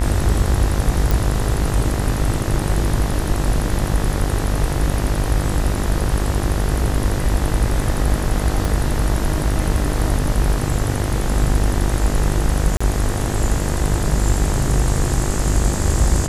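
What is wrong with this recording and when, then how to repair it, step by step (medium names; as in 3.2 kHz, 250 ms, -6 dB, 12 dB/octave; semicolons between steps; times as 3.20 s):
buzz 50 Hz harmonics 40 -23 dBFS
1.11 s: pop
8.65 s: pop
12.77–12.80 s: dropout 35 ms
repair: de-click; de-hum 50 Hz, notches 40; interpolate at 12.77 s, 35 ms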